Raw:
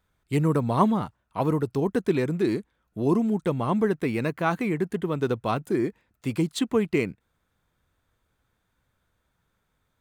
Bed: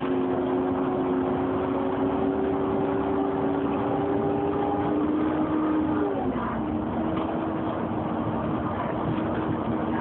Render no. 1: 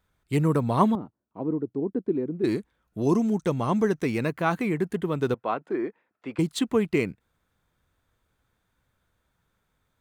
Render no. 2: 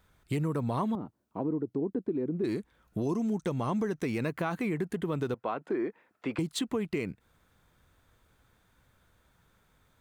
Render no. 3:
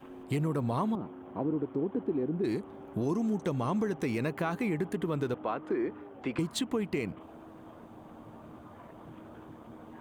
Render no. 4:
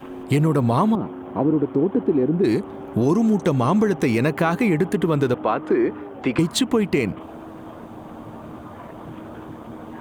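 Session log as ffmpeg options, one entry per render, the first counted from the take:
-filter_complex "[0:a]asettb=1/sr,asplit=3[a][b][c];[a]atrim=end=0.954[d];[b]atrim=start=0.95:end=2.44,asetpts=PTS-STARTPTS,afade=t=in:d=0.004:c=qsin,afade=t=out:st=1.486:d=0.004:c=qsin,bandpass=f=300:t=q:w=1.8[e];[c]atrim=start=2.436[f];[d][e]acrossfade=d=0.004:c1=hsin:c2=qsin[g];[g][f]acrossfade=d=0.004:c1=qsin:c2=hsin,asettb=1/sr,asplit=3[h][i][j];[h]atrim=end=3.014[k];[i]atrim=start=3.01:end=4.18,asetpts=PTS-STARTPTS,afade=t=in:d=0.004:c=qsin,afade=t=out:st=1.166:d=0.004:c=qsin,equalizer=f=6k:w=3.2:g=12.5[l];[j]atrim=start=4.176[m];[k][l]acrossfade=d=0.004:c1=hsin:c2=qsin[n];[n][m]acrossfade=d=0.004:c1=qsin:c2=hsin,asettb=1/sr,asplit=3[o][p][q];[o]atrim=end=5.344[r];[p]atrim=start=5.34:end=6.39,asetpts=PTS-STARTPTS,afade=t=in:d=0.004:c=qsin,afade=t=out:st=1.046:d=0.004:c=qsin,highpass=350,lowpass=2.1k[s];[q]atrim=start=6.386[t];[r][s]acrossfade=d=0.004:c1=hsin:c2=qsin[u];[u][t]acrossfade=d=0.004:c1=qsin:c2=hsin"
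-filter_complex "[0:a]acompressor=threshold=-33dB:ratio=6,asplit=2[a][b];[b]alimiter=level_in=8.5dB:limit=-24dB:level=0:latency=1,volume=-8.5dB,volume=1.5dB[c];[a][c]amix=inputs=2:normalize=0"
-filter_complex "[1:a]volume=-22dB[a];[0:a][a]amix=inputs=2:normalize=0"
-af "volume=12dB"

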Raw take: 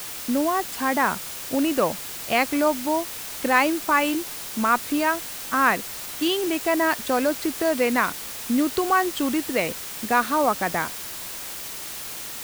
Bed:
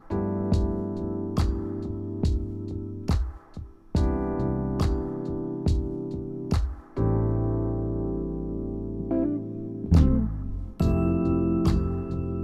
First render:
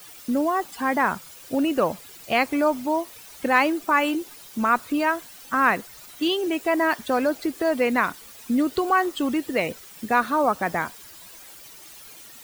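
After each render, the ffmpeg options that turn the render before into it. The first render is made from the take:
-af "afftdn=nr=13:nf=-35"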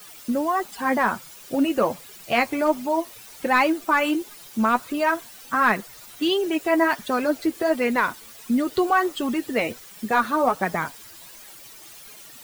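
-filter_complex "[0:a]asplit=2[a][b];[b]aeval=exprs='clip(val(0),-1,0.188)':c=same,volume=-3.5dB[c];[a][c]amix=inputs=2:normalize=0,flanger=delay=4.7:depth=4.6:regen=32:speed=1.4:shape=sinusoidal"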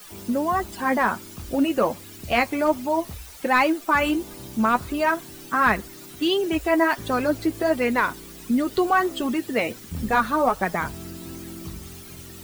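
-filter_complex "[1:a]volume=-14.5dB[a];[0:a][a]amix=inputs=2:normalize=0"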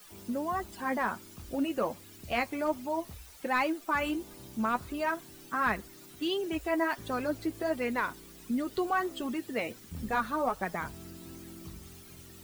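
-af "volume=-9.5dB"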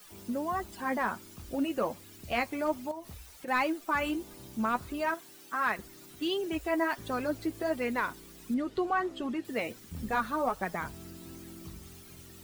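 -filter_complex "[0:a]asettb=1/sr,asplit=3[a][b][c];[a]atrim=end=2.914[d];[b]atrim=start=2.91:end=3.48,asetpts=PTS-STARTPTS,afade=t=in:d=0.004:c=qsin,afade=t=out:st=0.566:d=0.004:c=qsin,acompressor=threshold=-39dB:ratio=4:attack=3.2:release=140:knee=1:detection=peak[e];[c]atrim=start=3.476[f];[d][e]acrossfade=d=0.004:c1=hsin:c2=qsin[g];[g][f]acrossfade=d=0.004:c1=qsin:c2=hsin,asettb=1/sr,asplit=3[h][i][j];[h]atrim=end=5.144[k];[i]atrim=start=5.14:end=5.79,asetpts=PTS-STARTPTS,afade=t=in:d=0.004:c=qsin,afade=t=out:st=0.646:d=0.004:c=qsin,highpass=f=490:p=1[l];[j]atrim=start=5.786[m];[k][l]acrossfade=d=0.004:c1=hsin:c2=qsin[n];[n][m]acrossfade=d=0.004:c1=qsin:c2=hsin,asettb=1/sr,asplit=3[o][p][q];[o]atrim=end=8.544[r];[p]atrim=start=8.54:end=9.45,asetpts=PTS-STARTPTS,afade=t=in:d=0.004:c=qsin,afade=t=out:st=0.906:d=0.004:c=qsin,aemphasis=mode=reproduction:type=50fm[s];[q]atrim=start=9.446[t];[r][s]acrossfade=d=0.004:c1=hsin:c2=qsin[u];[u][t]acrossfade=d=0.004:c1=qsin:c2=hsin"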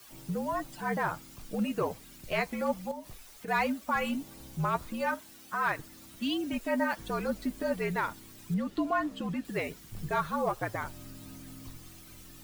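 -af "acrusher=bits=9:mix=0:aa=0.000001,afreqshift=-64"

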